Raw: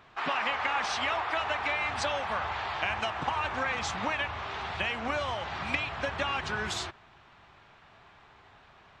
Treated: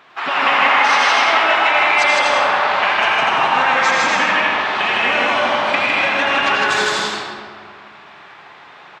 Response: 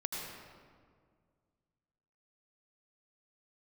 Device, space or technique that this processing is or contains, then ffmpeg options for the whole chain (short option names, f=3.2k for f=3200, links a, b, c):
stadium PA: -filter_complex "[0:a]highpass=240,equalizer=f=2.4k:t=o:w=2.5:g=3.5,aecho=1:1:157.4|242:0.891|0.562[a];[1:a]atrim=start_sample=2205[b];[a][b]afir=irnorm=-1:irlink=0,volume=8.5dB"